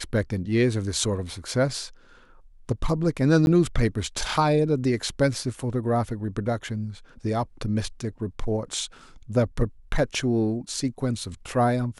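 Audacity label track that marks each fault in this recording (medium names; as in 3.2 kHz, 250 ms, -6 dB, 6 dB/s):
3.460000	3.470000	dropout 11 ms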